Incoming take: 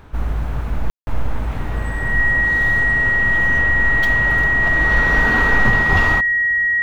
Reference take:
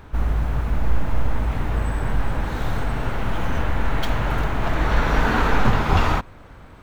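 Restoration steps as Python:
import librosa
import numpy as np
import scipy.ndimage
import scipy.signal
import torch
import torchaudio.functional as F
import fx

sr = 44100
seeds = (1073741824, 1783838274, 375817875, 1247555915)

y = fx.notch(x, sr, hz=1900.0, q=30.0)
y = fx.fix_ambience(y, sr, seeds[0], print_start_s=0.0, print_end_s=0.5, start_s=0.9, end_s=1.07)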